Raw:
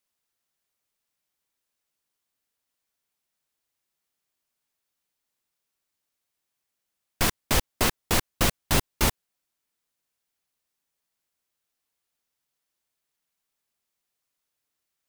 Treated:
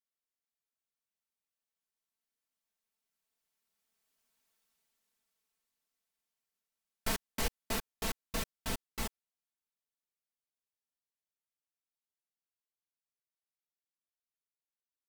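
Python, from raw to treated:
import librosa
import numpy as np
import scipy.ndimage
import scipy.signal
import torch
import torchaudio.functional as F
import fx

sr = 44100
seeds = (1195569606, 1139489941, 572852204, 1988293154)

y = fx.doppler_pass(x, sr, speed_mps=22, closest_m=12.0, pass_at_s=4.47)
y = y + 0.68 * np.pad(y, (int(4.5 * sr / 1000.0), 0))[:len(y)]
y = y * librosa.db_to_amplitude(1.5)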